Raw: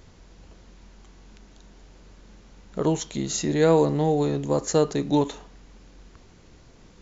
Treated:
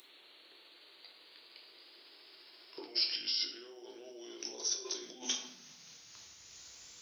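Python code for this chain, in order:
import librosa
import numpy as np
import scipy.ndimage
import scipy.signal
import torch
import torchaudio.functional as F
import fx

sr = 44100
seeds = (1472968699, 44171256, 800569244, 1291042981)

y = fx.pitch_glide(x, sr, semitones=-9.0, runs='ending unshifted')
y = fx.high_shelf(y, sr, hz=2700.0, db=6.5)
y = fx.over_compress(y, sr, threshold_db=-32.0, ratio=-1.0)
y = np.diff(y, prepend=0.0)
y = fx.dmg_noise_colour(y, sr, seeds[0], colour='pink', level_db=-79.0)
y = fx.filter_sweep_highpass(y, sr, from_hz=370.0, to_hz=62.0, start_s=4.97, end_s=6.45, q=4.2)
y = fx.room_shoebox(y, sr, seeds[1], volume_m3=120.0, walls='mixed', distance_m=0.67)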